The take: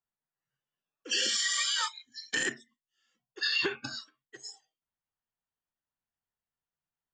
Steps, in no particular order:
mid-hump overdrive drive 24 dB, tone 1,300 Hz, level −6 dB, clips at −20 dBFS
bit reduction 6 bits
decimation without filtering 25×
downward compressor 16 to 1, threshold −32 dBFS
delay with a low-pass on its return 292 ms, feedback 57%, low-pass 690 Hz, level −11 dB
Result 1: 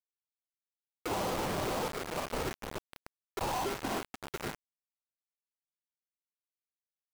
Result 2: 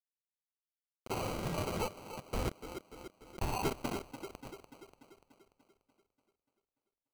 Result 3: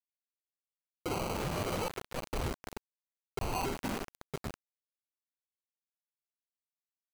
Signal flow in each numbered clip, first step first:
decimation without filtering, then mid-hump overdrive, then delay with a low-pass on its return, then downward compressor, then bit reduction
downward compressor, then bit reduction, then delay with a low-pass on its return, then mid-hump overdrive, then decimation without filtering
mid-hump overdrive, then decimation without filtering, then delay with a low-pass on its return, then downward compressor, then bit reduction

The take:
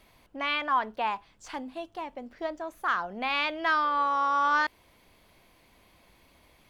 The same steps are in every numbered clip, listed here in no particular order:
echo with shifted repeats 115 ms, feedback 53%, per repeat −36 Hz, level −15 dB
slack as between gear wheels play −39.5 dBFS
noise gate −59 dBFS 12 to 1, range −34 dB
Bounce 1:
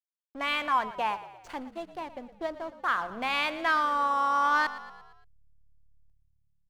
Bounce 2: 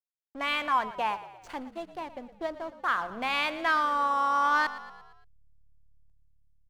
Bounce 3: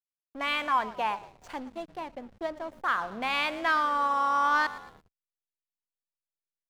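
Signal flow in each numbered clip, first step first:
slack as between gear wheels, then noise gate, then echo with shifted repeats
slack as between gear wheels, then echo with shifted repeats, then noise gate
echo with shifted repeats, then slack as between gear wheels, then noise gate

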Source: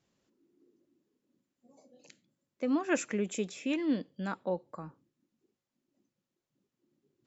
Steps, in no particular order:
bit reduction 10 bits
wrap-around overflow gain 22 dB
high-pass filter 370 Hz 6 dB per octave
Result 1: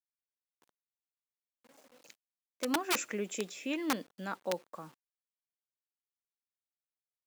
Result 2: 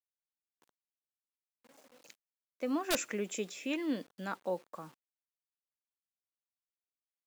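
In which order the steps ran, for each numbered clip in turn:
wrap-around overflow, then bit reduction, then high-pass filter
bit reduction, then high-pass filter, then wrap-around overflow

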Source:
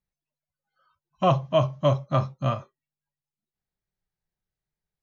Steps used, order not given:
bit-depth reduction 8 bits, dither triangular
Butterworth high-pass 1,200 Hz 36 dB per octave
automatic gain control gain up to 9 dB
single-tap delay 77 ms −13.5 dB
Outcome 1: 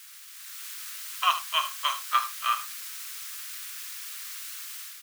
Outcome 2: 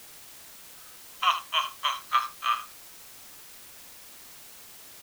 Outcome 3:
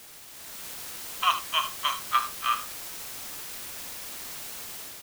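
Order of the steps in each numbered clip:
bit-depth reduction, then Butterworth high-pass, then automatic gain control, then single-tap delay
Butterworth high-pass, then automatic gain control, then bit-depth reduction, then single-tap delay
Butterworth high-pass, then bit-depth reduction, then single-tap delay, then automatic gain control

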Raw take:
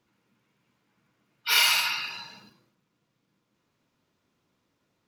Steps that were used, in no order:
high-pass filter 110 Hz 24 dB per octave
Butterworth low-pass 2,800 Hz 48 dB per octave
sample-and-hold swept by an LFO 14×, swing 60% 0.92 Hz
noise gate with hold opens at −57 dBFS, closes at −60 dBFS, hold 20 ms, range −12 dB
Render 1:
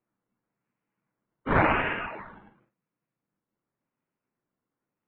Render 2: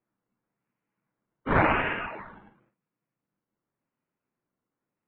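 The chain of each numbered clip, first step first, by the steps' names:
noise gate with hold, then high-pass filter, then sample-and-hold swept by an LFO, then Butterworth low-pass
high-pass filter, then noise gate with hold, then sample-and-hold swept by an LFO, then Butterworth low-pass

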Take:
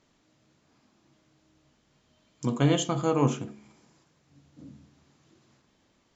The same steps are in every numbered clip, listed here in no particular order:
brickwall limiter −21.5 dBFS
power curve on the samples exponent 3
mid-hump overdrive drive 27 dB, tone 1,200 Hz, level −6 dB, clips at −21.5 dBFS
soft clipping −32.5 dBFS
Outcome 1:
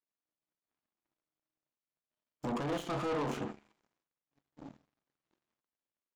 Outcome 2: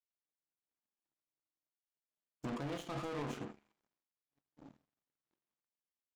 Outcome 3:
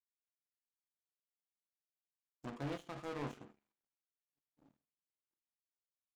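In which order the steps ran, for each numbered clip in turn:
brickwall limiter, then soft clipping, then mid-hump overdrive, then power curve on the samples
mid-hump overdrive, then brickwall limiter, then power curve on the samples, then soft clipping
mid-hump overdrive, then power curve on the samples, then soft clipping, then brickwall limiter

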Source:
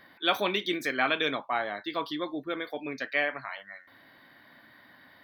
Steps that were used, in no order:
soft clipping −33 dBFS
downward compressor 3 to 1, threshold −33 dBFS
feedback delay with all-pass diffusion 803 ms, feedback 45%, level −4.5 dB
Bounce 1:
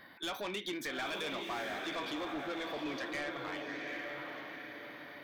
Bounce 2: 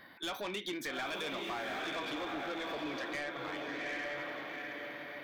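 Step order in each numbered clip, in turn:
downward compressor, then feedback delay with all-pass diffusion, then soft clipping
feedback delay with all-pass diffusion, then downward compressor, then soft clipping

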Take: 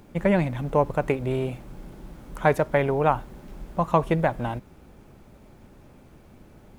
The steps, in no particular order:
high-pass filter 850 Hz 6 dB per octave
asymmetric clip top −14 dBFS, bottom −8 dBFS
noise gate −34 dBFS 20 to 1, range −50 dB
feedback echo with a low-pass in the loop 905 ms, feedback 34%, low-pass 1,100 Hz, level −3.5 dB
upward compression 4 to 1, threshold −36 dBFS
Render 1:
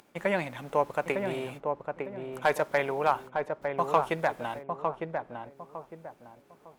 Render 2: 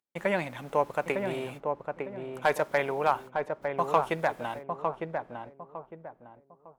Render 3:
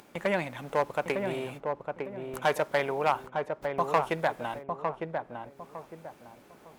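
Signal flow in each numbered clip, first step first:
noise gate, then upward compression, then high-pass filter, then asymmetric clip, then feedback echo with a low-pass in the loop
upward compression, then noise gate, then high-pass filter, then asymmetric clip, then feedback echo with a low-pass in the loop
asymmetric clip, then noise gate, then high-pass filter, then upward compression, then feedback echo with a low-pass in the loop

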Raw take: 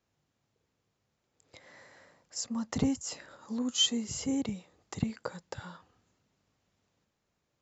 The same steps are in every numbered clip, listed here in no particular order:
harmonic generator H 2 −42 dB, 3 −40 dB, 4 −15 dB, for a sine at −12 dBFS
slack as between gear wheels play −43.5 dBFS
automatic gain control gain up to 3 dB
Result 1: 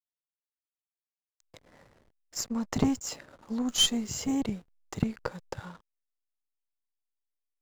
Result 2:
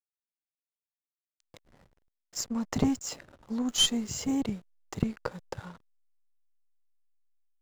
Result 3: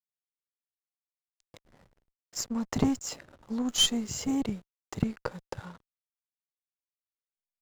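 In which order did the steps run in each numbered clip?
automatic gain control, then harmonic generator, then slack as between gear wheels
harmonic generator, then slack as between gear wheels, then automatic gain control
slack as between gear wheels, then automatic gain control, then harmonic generator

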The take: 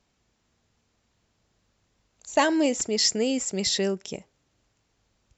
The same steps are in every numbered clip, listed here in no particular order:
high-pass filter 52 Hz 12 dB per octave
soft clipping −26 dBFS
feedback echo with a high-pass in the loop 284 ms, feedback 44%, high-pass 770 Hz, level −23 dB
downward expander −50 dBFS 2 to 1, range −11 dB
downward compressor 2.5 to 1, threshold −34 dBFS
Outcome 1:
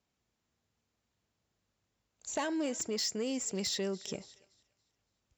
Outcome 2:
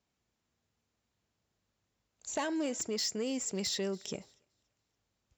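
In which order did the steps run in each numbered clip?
feedback echo with a high-pass in the loop, then downward compressor, then soft clipping, then high-pass filter, then downward expander
downward compressor, then soft clipping, then feedback echo with a high-pass in the loop, then downward expander, then high-pass filter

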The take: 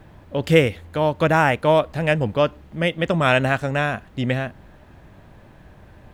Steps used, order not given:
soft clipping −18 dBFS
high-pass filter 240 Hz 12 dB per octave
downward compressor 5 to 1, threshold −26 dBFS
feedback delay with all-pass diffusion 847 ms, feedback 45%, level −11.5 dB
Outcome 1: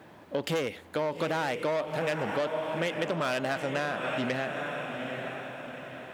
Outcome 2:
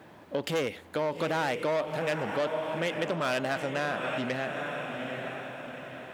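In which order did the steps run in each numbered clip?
feedback delay with all-pass diffusion, then soft clipping, then high-pass filter, then downward compressor
feedback delay with all-pass diffusion, then soft clipping, then downward compressor, then high-pass filter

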